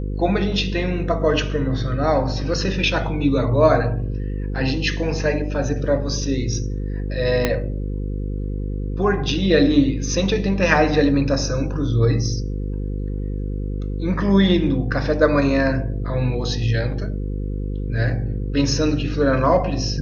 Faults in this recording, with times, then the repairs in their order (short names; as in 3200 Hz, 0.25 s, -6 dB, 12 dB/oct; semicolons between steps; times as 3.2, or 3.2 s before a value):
buzz 50 Hz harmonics 10 -25 dBFS
7.45 pop -4 dBFS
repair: de-click; de-hum 50 Hz, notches 10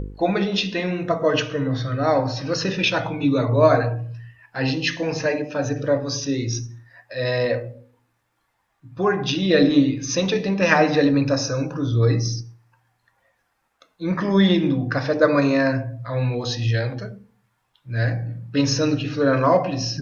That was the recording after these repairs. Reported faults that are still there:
7.45 pop